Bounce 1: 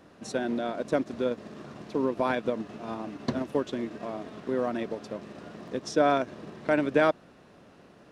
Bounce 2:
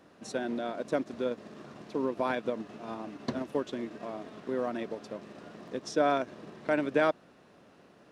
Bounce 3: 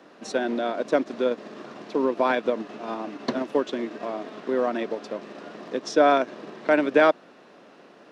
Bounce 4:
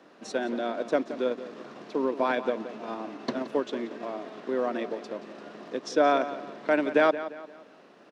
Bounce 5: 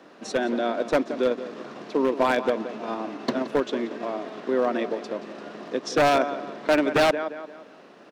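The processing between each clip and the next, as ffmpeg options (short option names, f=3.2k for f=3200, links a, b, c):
-af "lowshelf=f=98:g=-8.5,volume=-3dB"
-filter_complex "[0:a]acrossover=split=200 6900:gain=0.1 1 0.251[a][b][c];[a][b][c]amix=inputs=3:normalize=0,volume=8.5dB"
-filter_complex "[0:a]asplit=2[a][b];[b]adelay=174,lowpass=f=4.6k:p=1,volume=-13dB,asplit=2[c][d];[d]adelay=174,lowpass=f=4.6k:p=1,volume=0.4,asplit=2[e][f];[f]adelay=174,lowpass=f=4.6k:p=1,volume=0.4,asplit=2[g][h];[h]adelay=174,lowpass=f=4.6k:p=1,volume=0.4[i];[a][c][e][g][i]amix=inputs=5:normalize=0,volume=-4dB"
-af "aeval=exprs='0.126*(abs(mod(val(0)/0.126+3,4)-2)-1)':c=same,volume=5dB"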